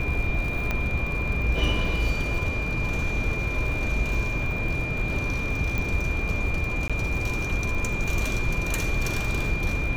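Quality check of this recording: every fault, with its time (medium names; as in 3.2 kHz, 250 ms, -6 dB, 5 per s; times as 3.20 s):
crackle 64 per s -32 dBFS
whine 2.4 kHz -30 dBFS
0.71 s: pop -13 dBFS
5.78 s: pop
6.88–6.90 s: dropout 16 ms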